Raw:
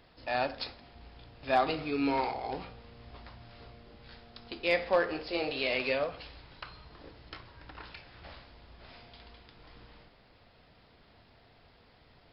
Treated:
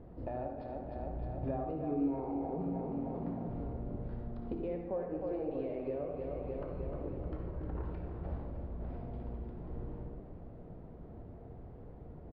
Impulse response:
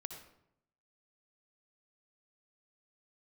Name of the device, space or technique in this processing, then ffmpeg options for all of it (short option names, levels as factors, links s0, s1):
television next door: -filter_complex "[0:a]asettb=1/sr,asplit=3[s0][s1][s2];[s0]atrim=end=2.484[s3];[s1]atrim=start=2.48:end=3.49,asetpts=PTS-STARTPTS,afade=t=in:d=0.004:c=qsin,afade=t=out:st=1.006:d=0.004:c=qsin,lowshelf=f=120:t=q:w=3:g=-12[s4];[s2]atrim=start=3.486[s5];[s3][s4]acrossfade=d=0.004:c1=hsin:c2=qsin[s6];[s6][s5]acrossfade=d=0.004:c1=qsin:c2=hsin,aecho=1:1:306|612|918|1224|1530|1836:0.282|0.155|0.0853|0.0469|0.0258|0.0142,acompressor=threshold=0.00708:ratio=6,lowpass=450[s7];[1:a]atrim=start_sample=2205[s8];[s7][s8]afir=irnorm=-1:irlink=0,volume=6.31"